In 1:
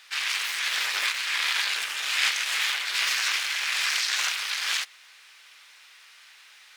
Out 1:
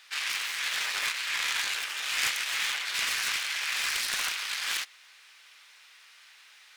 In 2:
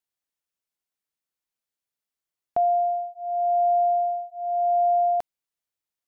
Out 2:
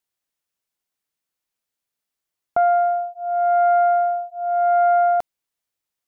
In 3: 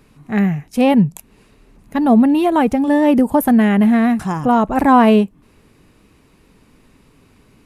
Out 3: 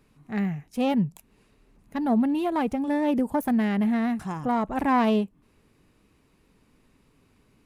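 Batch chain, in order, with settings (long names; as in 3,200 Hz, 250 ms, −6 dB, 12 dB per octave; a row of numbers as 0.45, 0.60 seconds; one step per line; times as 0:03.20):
phase distortion by the signal itself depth 0.093 ms
normalise the peak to −12 dBFS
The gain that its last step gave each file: −3.0, +5.0, −11.0 decibels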